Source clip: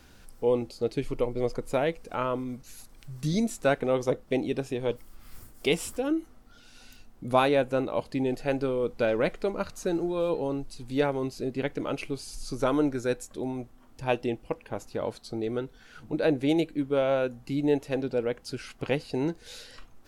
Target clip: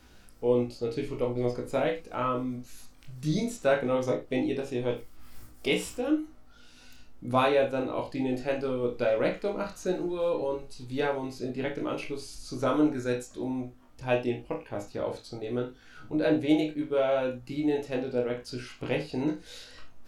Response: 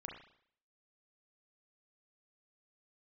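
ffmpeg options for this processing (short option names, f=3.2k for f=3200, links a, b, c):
-filter_complex "[1:a]atrim=start_sample=2205,afade=t=out:st=0.27:d=0.01,atrim=end_sample=12348,asetrate=83790,aresample=44100[a];[0:a][a]afir=irnorm=-1:irlink=0,volume=7.5dB"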